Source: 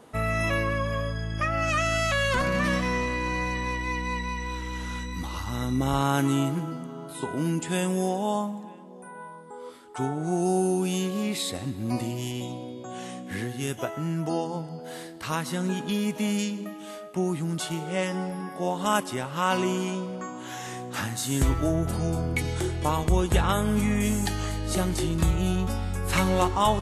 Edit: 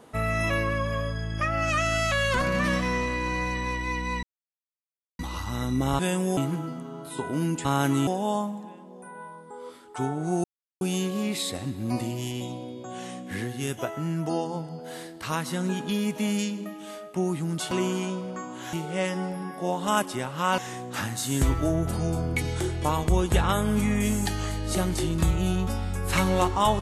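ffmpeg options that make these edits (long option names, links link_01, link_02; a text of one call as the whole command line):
ffmpeg -i in.wav -filter_complex "[0:a]asplit=12[link_01][link_02][link_03][link_04][link_05][link_06][link_07][link_08][link_09][link_10][link_11][link_12];[link_01]atrim=end=4.23,asetpts=PTS-STARTPTS,afade=type=out:start_time=4.226:duration=0.004:curve=hsin[link_13];[link_02]atrim=start=4.23:end=5.19,asetpts=PTS-STARTPTS,volume=0[link_14];[link_03]atrim=start=5.19:end=5.992,asetpts=PTS-STARTPTS,afade=type=in:duration=0.004:curve=hsin[link_15];[link_04]atrim=start=7.688:end=8.072[link_16];[link_05]atrim=start=6.408:end=7.692[link_17];[link_06]atrim=start=5.988:end=6.412[link_18];[link_07]atrim=start=8.068:end=10.44,asetpts=PTS-STARTPTS,afade=type=out:start_time=2.368:duration=0.004:curve=hsin[link_19];[link_08]atrim=start=10.44:end=10.81,asetpts=PTS-STARTPTS,volume=0[link_20];[link_09]atrim=start=10.81:end=17.712,asetpts=PTS-STARTPTS,afade=type=in:duration=0.004:curve=hsin[link_21];[link_10]atrim=start=19.558:end=20.582[link_22];[link_11]atrim=start=17.708:end=19.562[link_23];[link_12]atrim=start=20.578[link_24];[link_13][link_14][link_15]concat=n=3:v=0:a=1[link_25];[link_25][link_16]acrossfade=duration=0.004:curve1=hsin:curve2=hsin[link_26];[link_26][link_17]acrossfade=duration=0.004:curve1=hsin:curve2=hsin[link_27];[link_27][link_18]acrossfade=duration=0.004:curve1=hsin:curve2=hsin[link_28];[link_19][link_20][link_21]concat=n=3:v=0:a=1[link_29];[link_28][link_29]acrossfade=duration=0.004:curve1=hsin:curve2=hsin[link_30];[link_30][link_22]acrossfade=duration=0.004:curve1=hsin:curve2=hsin[link_31];[link_31][link_23]acrossfade=duration=0.004:curve1=hsin:curve2=hsin[link_32];[link_32][link_24]acrossfade=duration=0.004:curve1=hsin:curve2=hsin" out.wav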